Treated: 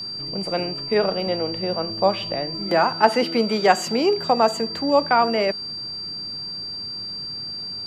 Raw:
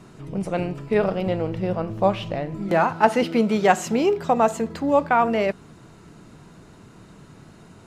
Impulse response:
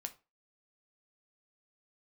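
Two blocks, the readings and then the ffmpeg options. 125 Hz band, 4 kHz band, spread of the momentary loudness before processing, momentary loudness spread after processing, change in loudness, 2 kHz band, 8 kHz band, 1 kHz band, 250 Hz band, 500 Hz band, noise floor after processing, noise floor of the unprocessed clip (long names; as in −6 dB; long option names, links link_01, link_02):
−5.0 dB, +14.5 dB, 9 LU, 10 LU, 0.0 dB, +1.0 dB, +1.0 dB, +1.0 dB, −2.0 dB, +1.0 dB, −32 dBFS, −48 dBFS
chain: -filter_complex "[0:a]acrossover=split=210|580|1500[link_01][link_02][link_03][link_04];[link_01]acompressor=threshold=-42dB:ratio=6[link_05];[link_05][link_02][link_03][link_04]amix=inputs=4:normalize=0,aeval=exprs='val(0)+0.0316*sin(2*PI*4700*n/s)':channel_layout=same,volume=1dB"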